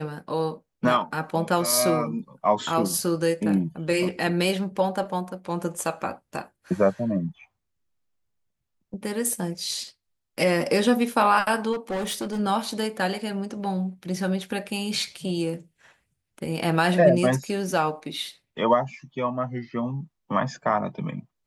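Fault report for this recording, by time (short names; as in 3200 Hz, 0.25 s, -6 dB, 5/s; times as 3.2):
11.72–12.4 clipped -25 dBFS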